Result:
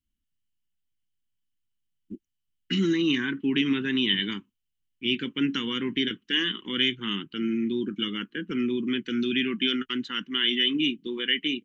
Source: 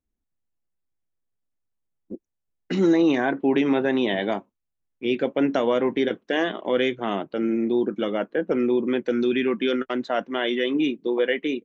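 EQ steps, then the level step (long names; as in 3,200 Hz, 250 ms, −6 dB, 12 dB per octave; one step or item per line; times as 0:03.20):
Butterworth band-reject 650 Hz, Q 0.52
parametric band 3,000 Hz +14 dB 0.22 octaves
0.0 dB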